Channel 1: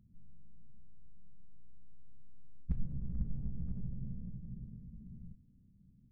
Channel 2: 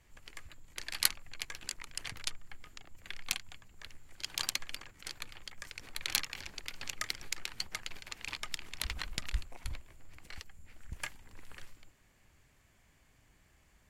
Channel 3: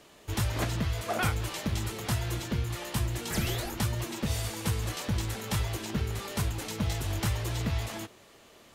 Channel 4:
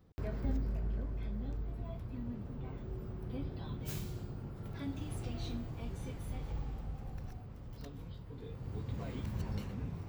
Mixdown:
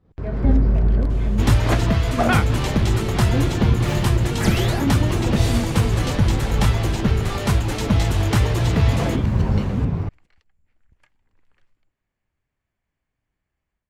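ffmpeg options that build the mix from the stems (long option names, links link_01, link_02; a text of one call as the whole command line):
ffmpeg -i stem1.wav -i stem2.wav -i stem3.wav -i stem4.wav -filter_complex "[0:a]volume=-13.5dB[link_01];[1:a]acompressor=threshold=-40dB:ratio=6,volume=-16.5dB[link_02];[2:a]highshelf=frequency=5900:gain=8,adelay=1100,volume=0.5dB[link_03];[3:a]acontrast=66,volume=1dB[link_04];[link_01][link_02][link_03][link_04]amix=inputs=4:normalize=0,agate=range=-8dB:threshold=-56dB:ratio=16:detection=peak,dynaudnorm=framelen=250:gausssize=3:maxgain=11dB,aemphasis=mode=reproduction:type=75fm" out.wav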